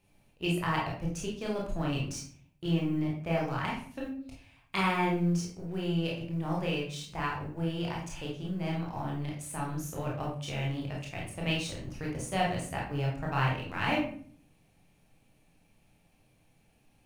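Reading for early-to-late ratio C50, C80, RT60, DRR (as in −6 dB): 4.0 dB, 8.5 dB, 0.50 s, −3.5 dB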